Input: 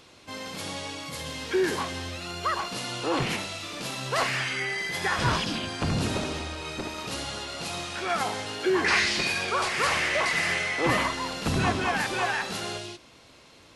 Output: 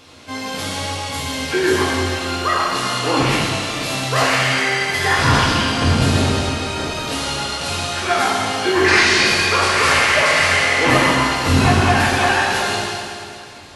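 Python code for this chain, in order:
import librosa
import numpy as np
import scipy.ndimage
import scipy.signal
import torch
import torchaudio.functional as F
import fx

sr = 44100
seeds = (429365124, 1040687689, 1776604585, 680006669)

y = fx.rev_fdn(x, sr, rt60_s=2.5, lf_ratio=0.9, hf_ratio=0.95, size_ms=67.0, drr_db=-5.0)
y = y * librosa.db_to_amplitude(5.0)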